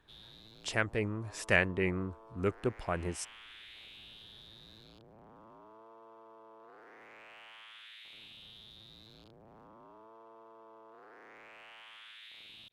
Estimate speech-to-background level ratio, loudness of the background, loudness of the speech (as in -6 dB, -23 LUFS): 20.0 dB, -53.5 LUFS, -33.5 LUFS